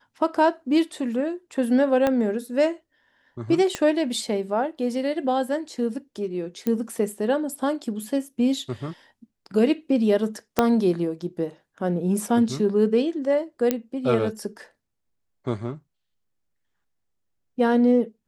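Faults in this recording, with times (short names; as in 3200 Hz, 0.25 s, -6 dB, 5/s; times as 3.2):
2.07 pop -10 dBFS
3.75 pop -12 dBFS
6.67 pop -13 dBFS
10.59 pop -4 dBFS
13.71 pop -8 dBFS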